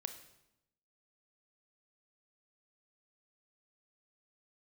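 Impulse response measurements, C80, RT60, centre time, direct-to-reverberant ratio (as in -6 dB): 12.5 dB, 0.85 s, 12 ms, 8.0 dB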